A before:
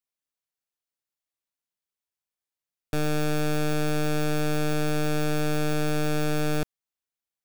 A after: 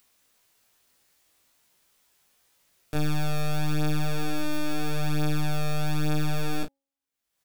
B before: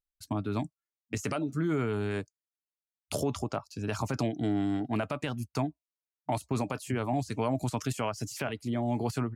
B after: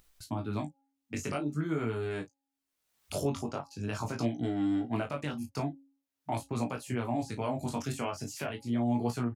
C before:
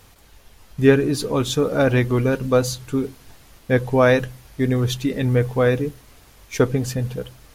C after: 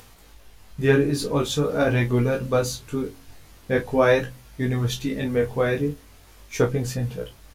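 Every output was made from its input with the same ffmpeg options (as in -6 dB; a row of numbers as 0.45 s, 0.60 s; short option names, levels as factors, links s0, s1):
-filter_complex "[0:a]bandreject=f=274.4:t=h:w=4,bandreject=f=548.8:t=h:w=4,bandreject=f=823.2:t=h:w=4,asplit=2[s0][s1];[s1]aecho=0:1:21|34:0.282|0.266[s2];[s0][s2]amix=inputs=2:normalize=0,flanger=delay=16.5:depth=5:speed=0.44,acompressor=mode=upward:threshold=0.00631:ratio=2.5"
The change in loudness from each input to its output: -2.5 LU, -1.5 LU, -3.0 LU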